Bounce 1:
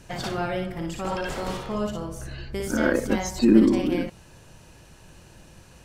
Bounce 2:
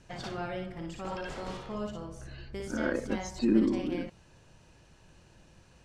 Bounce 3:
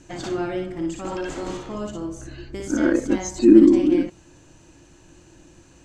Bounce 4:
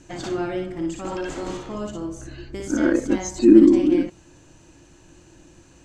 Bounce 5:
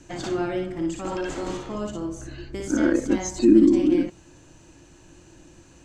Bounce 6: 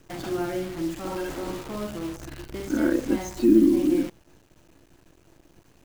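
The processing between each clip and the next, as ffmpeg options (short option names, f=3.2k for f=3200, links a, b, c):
-af "lowpass=7.2k,volume=-8.5dB"
-af "superequalizer=6b=3.55:15b=2.51,volume=5.5dB"
-af anull
-filter_complex "[0:a]acrossover=split=270|3000[a][b][c];[b]acompressor=threshold=-20dB:ratio=3[d];[a][d][c]amix=inputs=3:normalize=0"
-af "aemphasis=mode=reproduction:type=50fm,acrusher=bits=7:dc=4:mix=0:aa=0.000001,volume=-2.5dB"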